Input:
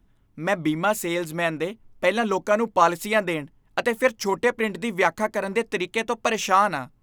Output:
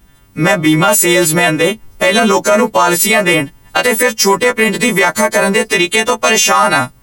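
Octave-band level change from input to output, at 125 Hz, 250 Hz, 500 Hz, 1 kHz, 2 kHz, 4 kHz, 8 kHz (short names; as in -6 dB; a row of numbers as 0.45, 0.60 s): +15.0, +13.0, +10.5, +9.5, +13.5, +18.0, +21.5 dB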